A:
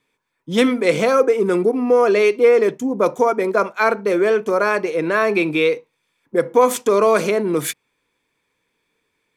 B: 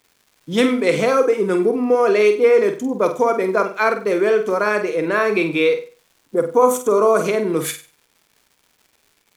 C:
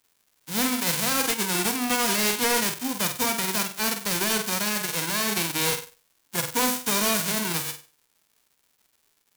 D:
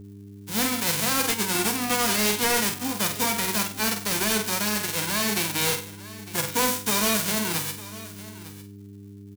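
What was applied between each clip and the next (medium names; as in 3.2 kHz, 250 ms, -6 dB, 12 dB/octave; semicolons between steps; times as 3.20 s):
time-frequency box 6.12–7.25 s, 1.5–5.5 kHz -10 dB; crackle 280 per s -42 dBFS; flutter echo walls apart 8.2 m, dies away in 0.35 s; trim -1 dB
formants flattened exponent 0.1; overload inside the chain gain 12.5 dB; trim -6.5 dB
delay 904 ms -17 dB; mains buzz 100 Hz, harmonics 4, -42 dBFS -5 dB/octave; doubling 14 ms -10.5 dB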